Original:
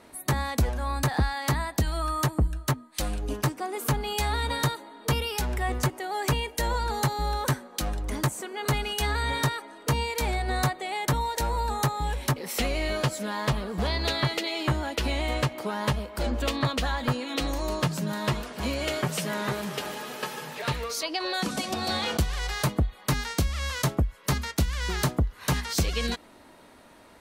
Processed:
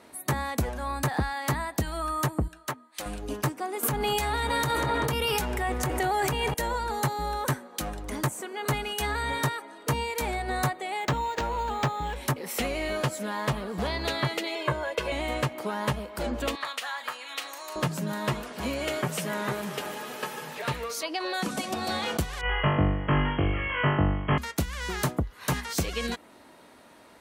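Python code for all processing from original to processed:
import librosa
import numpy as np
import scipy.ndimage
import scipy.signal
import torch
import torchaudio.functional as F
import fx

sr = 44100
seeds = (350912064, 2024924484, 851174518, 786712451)

y = fx.chain(x, sr, fx.highpass(hz=620.0, slope=6),
    fx.high_shelf(hz=4500.0, db=-5.5), at=(2.48, 3.06))
y = fx.chain(y, sr, fx.transient(attack_db=-9, sustain_db=-2),
    fx.echo_filtered(ms=193, feedback_pct=62, hz=4000.0, wet_db=-14),
    fx.env_flatten(amount_pct=100), at=(3.83, 6.54))
y = fx.chain(y, sr, fx.high_shelf(hz=6800.0, db=6.5),
    fx.resample_linear(factor=4), at=(11.0, 12.16))
y = fx.chain(y, sr, fx.highpass(hz=200.0, slope=6),
    fx.high_shelf(hz=4200.0, db=-9.0),
    fx.comb(ms=1.9, depth=0.97), at=(14.55, 15.12))
y = fx.chain(y, sr, fx.highpass(hz=1100.0, slope=12),
    fx.doubler(ms=39.0, db=-13), at=(16.55, 17.76))
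y = fx.chain(y, sr, fx.brickwall_lowpass(high_hz=3300.0),
    fx.room_flutter(wall_m=3.5, rt60_s=0.88), at=(22.41, 24.38))
y = fx.highpass(y, sr, hz=120.0, slope=6)
y = fx.dynamic_eq(y, sr, hz=4500.0, q=1.3, threshold_db=-46.0, ratio=4.0, max_db=-5)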